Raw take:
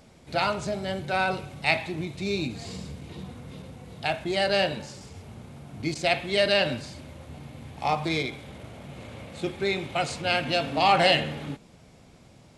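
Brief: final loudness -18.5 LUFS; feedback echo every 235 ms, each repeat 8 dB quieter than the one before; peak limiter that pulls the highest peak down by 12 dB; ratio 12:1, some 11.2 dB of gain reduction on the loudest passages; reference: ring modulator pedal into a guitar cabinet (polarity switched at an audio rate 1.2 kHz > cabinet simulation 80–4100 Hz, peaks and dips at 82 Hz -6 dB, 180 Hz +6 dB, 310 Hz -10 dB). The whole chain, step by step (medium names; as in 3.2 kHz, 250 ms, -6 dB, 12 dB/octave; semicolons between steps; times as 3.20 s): compression 12:1, threshold -27 dBFS; peak limiter -26 dBFS; feedback delay 235 ms, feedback 40%, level -8 dB; polarity switched at an audio rate 1.2 kHz; cabinet simulation 80–4100 Hz, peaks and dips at 82 Hz -6 dB, 180 Hz +6 dB, 310 Hz -10 dB; trim +18 dB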